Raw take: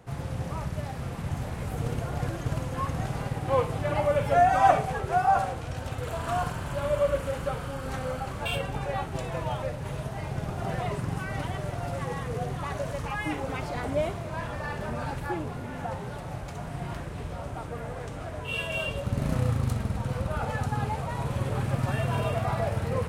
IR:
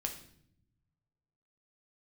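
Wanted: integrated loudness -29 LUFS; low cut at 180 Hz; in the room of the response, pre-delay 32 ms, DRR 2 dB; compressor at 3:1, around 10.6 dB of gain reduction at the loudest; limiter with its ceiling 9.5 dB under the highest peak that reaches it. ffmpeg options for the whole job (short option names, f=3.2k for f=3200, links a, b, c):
-filter_complex "[0:a]highpass=180,acompressor=threshold=-30dB:ratio=3,alimiter=level_in=5dB:limit=-24dB:level=0:latency=1,volume=-5dB,asplit=2[a][b];[1:a]atrim=start_sample=2205,adelay=32[c];[b][c]afir=irnorm=-1:irlink=0,volume=-2.5dB[d];[a][d]amix=inputs=2:normalize=0,volume=6.5dB"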